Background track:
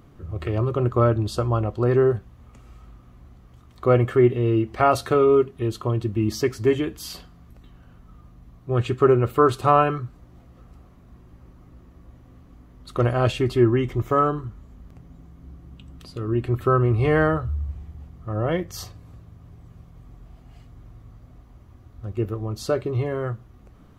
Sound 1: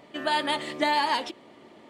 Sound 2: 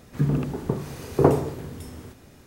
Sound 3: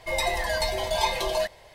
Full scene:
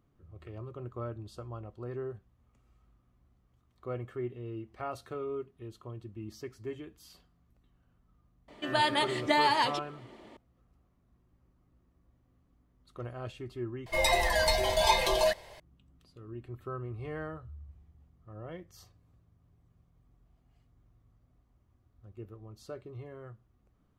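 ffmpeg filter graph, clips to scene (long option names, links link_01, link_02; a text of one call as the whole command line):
ffmpeg -i bed.wav -i cue0.wav -i cue1.wav -i cue2.wav -filter_complex "[0:a]volume=-20dB,asplit=2[link_01][link_02];[link_01]atrim=end=13.864[link_03];[3:a]atrim=end=1.74[link_04];[link_02]atrim=start=15.596[link_05];[1:a]atrim=end=1.89,asetpts=PTS-STARTPTS,volume=-1.5dB,afade=type=in:duration=0.004:curve=hsin,afade=type=out:start_time=1.886:duration=0.004:curve=hsin,adelay=8480[link_06];[link_03][link_04]acrossfade=duration=0.004:curve1=hsin:curve2=hsin[link_07];[link_07][link_05]acrossfade=duration=0.004:curve1=hsin:curve2=hsin[link_08];[link_08][link_06]amix=inputs=2:normalize=0" out.wav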